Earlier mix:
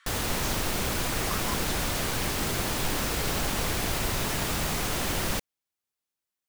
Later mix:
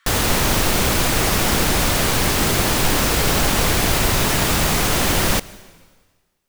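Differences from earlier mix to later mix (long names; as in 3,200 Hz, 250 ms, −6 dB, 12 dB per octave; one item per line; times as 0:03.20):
background +8.5 dB
reverb: on, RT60 1.5 s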